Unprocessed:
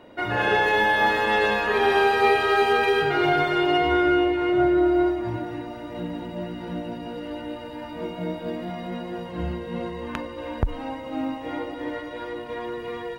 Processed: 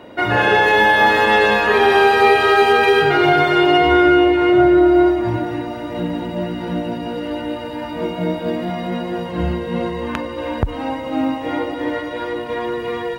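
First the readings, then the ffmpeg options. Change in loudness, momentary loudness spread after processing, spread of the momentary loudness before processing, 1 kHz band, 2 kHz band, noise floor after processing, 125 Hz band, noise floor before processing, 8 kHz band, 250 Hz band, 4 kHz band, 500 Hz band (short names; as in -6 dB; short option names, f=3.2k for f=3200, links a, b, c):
+7.5 dB, 13 LU, 14 LU, +7.5 dB, +7.5 dB, -28 dBFS, +8.0 dB, -37 dBFS, n/a, +8.0 dB, +7.5 dB, +7.5 dB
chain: -filter_complex "[0:a]highpass=49,asplit=2[a][b];[b]alimiter=limit=-14.5dB:level=0:latency=1:release=180,volume=0.5dB[c];[a][c]amix=inputs=2:normalize=0,volume=2.5dB"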